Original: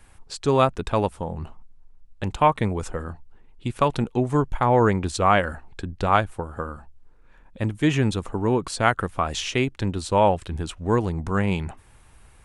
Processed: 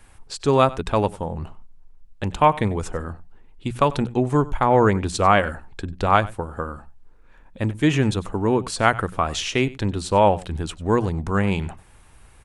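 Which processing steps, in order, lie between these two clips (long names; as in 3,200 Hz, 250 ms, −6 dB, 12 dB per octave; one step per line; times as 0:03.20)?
mains-hum notches 60/120/180 Hz
single-tap delay 95 ms −20 dB
level +2 dB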